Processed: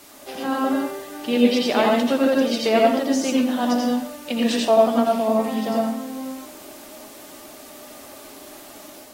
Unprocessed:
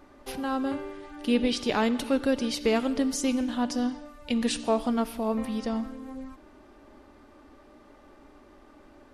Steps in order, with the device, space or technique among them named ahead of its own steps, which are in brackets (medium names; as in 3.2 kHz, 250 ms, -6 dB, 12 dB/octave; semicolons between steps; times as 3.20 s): filmed off a television (band-pass 230–6500 Hz; peaking EQ 650 Hz +7.5 dB 0.34 oct; reverberation RT60 0.35 s, pre-delay 80 ms, DRR -1 dB; white noise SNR 23 dB; level rider gain up to 3 dB; AAC 48 kbps 44.1 kHz)